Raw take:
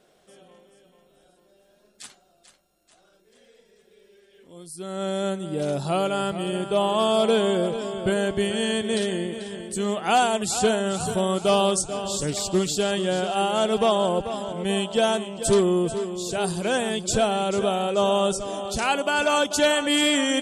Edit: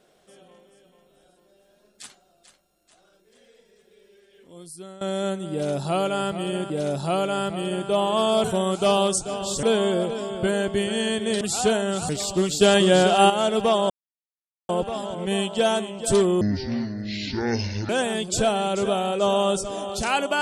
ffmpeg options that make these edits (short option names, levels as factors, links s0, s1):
-filter_complex "[0:a]asplit=12[s0][s1][s2][s3][s4][s5][s6][s7][s8][s9][s10][s11];[s0]atrim=end=5.01,asetpts=PTS-STARTPTS,afade=t=out:st=4.66:d=0.35:silence=0.125893[s12];[s1]atrim=start=5.01:end=6.702,asetpts=PTS-STARTPTS,afade=t=in:d=0.004:c=hsin:silence=0.125893[s13];[s2]atrim=start=5.518:end=7.262[s14];[s3]atrim=start=11.068:end=12.262[s15];[s4]atrim=start=7.258:end=9.042[s16];[s5]atrim=start=10.388:end=11.072[s17];[s6]atrim=start=12.258:end=12.782[s18];[s7]atrim=start=12.778:end=13.472,asetpts=PTS-STARTPTS,volume=2.37[s19];[s8]atrim=start=13.468:end=14.07,asetpts=PTS-STARTPTS,afade=t=out:st=0.598:d=0.004:c=hsin,apad=pad_dur=0.79[s20];[s9]atrim=start=14.07:end=15.794,asetpts=PTS-STARTPTS,afade=t=in:d=0.004:c=hsin[s21];[s10]atrim=start=15.79:end=16.65,asetpts=PTS-STARTPTS,asetrate=25578,aresample=44100[s22];[s11]atrim=start=16.646[s23];[s12][s13]concat=n=2:v=0:a=1[s24];[s24][s14]acrossfade=d=0.004:c1=hsin:c2=hsin[s25];[s25][s15]acrossfade=d=0.004:c1=hsin:c2=hsin[s26];[s26][s16]acrossfade=d=0.004:c1=hsin:c2=hsin[s27];[s27][s17]acrossfade=d=0.004:c1=hsin:c2=hsin[s28];[s28][s18]acrossfade=d=0.004:c1=hsin:c2=hsin[s29];[s29][s19]acrossfade=d=0.004:c1=hsin:c2=hsin[s30];[s20][s21]concat=n=2:v=0:a=1[s31];[s30][s31]acrossfade=d=0.004:c1=hsin:c2=hsin[s32];[s32][s22]acrossfade=d=0.004:c1=hsin:c2=hsin[s33];[s33][s23]acrossfade=d=0.004:c1=hsin:c2=hsin"